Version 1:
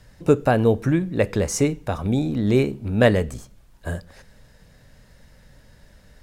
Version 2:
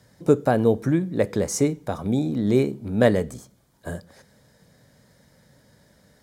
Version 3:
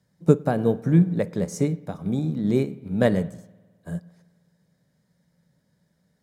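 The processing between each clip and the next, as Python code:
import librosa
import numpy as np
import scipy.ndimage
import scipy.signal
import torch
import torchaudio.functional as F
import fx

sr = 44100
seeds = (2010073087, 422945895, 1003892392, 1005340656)

y1 = scipy.signal.sosfilt(scipy.signal.butter(2, 130.0, 'highpass', fs=sr, output='sos'), x)
y1 = fx.peak_eq(y1, sr, hz=2000.0, db=-4.5, octaves=2.4)
y1 = fx.notch(y1, sr, hz=2700.0, q=7.2)
y2 = fx.peak_eq(y1, sr, hz=170.0, db=13.5, octaves=0.39)
y2 = fx.rev_spring(y2, sr, rt60_s=1.7, pass_ms=(52,), chirp_ms=65, drr_db=13.0)
y2 = fx.upward_expand(y2, sr, threshold_db=-38.0, expansion=1.5)
y2 = y2 * librosa.db_to_amplitude(-1.0)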